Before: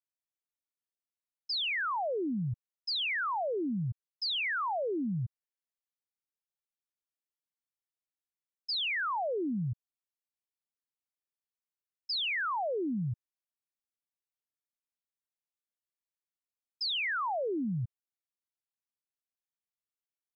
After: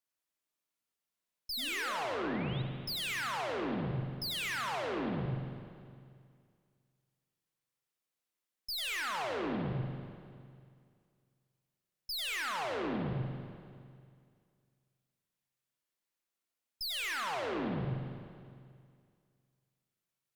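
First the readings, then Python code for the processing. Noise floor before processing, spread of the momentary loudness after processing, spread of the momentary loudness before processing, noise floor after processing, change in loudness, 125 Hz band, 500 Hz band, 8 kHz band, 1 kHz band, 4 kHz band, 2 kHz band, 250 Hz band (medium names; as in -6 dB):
under -85 dBFS, 18 LU, 9 LU, under -85 dBFS, -3.5 dB, 0.0 dB, -3.0 dB, no reading, -3.5 dB, -4.0 dB, -3.5 dB, -2.5 dB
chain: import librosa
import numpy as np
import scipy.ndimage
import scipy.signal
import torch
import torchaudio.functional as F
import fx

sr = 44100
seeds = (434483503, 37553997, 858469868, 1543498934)

y = fx.peak_eq(x, sr, hz=73.0, db=-8.0, octaves=0.94)
y = y + 10.0 ** (-5.5 / 20.0) * np.pad(y, (int(92 * sr / 1000.0), 0))[:len(y)]
y = fx.tube_stage(y, sr, drive_db=44.0, bias=0.65)
y = fx.spec_paint(y, sr, seeds[0], shape='rise', start_s=1.57, length_s=1.05, low_hz=230.0, high_hz=4000.0, level_db=-56.0)
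y = fx.rev_spring(y, sr, rt60_s=2.2, pass_ms=(38, 46), chirp_ms=35, drr_db=3.0)
y = y * 10.0 ** (7.5 / 20.0)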